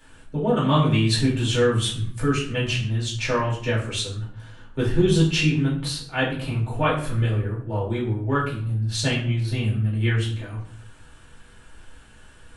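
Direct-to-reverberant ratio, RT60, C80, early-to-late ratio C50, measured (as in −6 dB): −6.5 dB, 0.55 s, 10.0 dB, 6.5 dB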